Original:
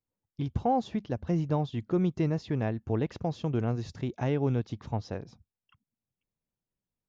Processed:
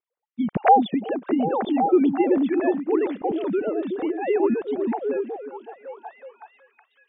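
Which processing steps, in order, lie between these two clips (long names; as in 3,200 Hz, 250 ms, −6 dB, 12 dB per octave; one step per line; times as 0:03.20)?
three sine waves on the formant tracks
echo through a band-pass that steps 372 ms, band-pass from 270 Hz, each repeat 0.7 octaves, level −2 dB
level +6.5 dB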